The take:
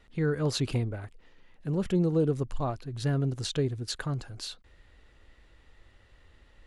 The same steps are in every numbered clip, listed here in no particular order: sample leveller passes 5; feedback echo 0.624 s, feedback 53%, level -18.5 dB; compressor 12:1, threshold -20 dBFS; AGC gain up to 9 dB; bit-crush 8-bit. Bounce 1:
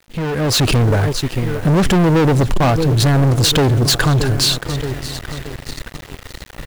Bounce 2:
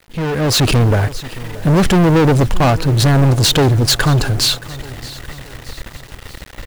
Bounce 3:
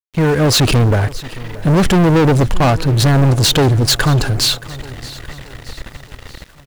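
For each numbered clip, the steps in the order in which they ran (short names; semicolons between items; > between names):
feedback echo > sample leveller > bit-crush > compressor > AGC; compressor > sample leveller > feedback echo > bit-crush > AGC; compressor > AGC > sample leveller > feedback echo > bit-crush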